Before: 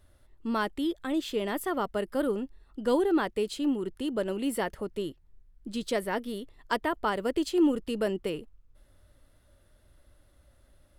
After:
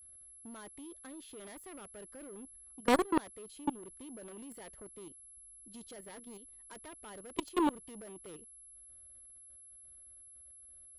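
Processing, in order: level quantiser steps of 12 dB; added harmonics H 3 -9 dB, 7 -35 dB, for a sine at -16.5 dBFS; whine 11000 Hz -58 dBFS; gain +5 dB

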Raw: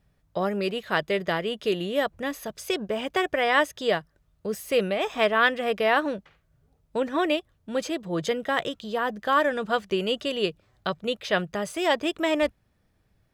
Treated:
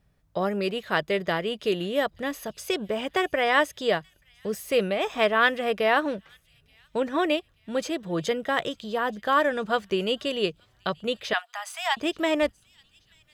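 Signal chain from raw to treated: 11.33–11.97 steep high-pass 690 Hz 96 dB/oct; thin delay 0.88 s, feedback 47%, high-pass 3400 Hz, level -22.5 dB

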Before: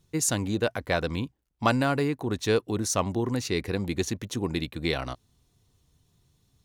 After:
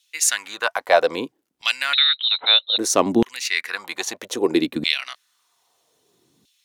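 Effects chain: vibrato 3 Hz 6.5 cents; 1.93–2.78 inverted band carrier 4000 Hz; LFO high-pass saw down 0.62 Hz 220–3100 Hz; gain +7 dB

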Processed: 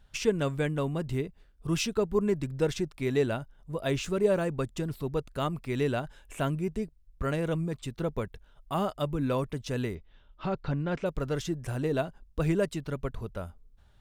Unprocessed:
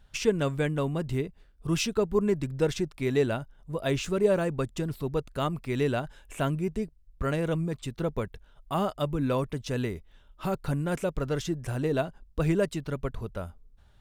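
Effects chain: 9.95–11.06 LPF 4800 Hz 24 dB/oct; gain -1.5 dB

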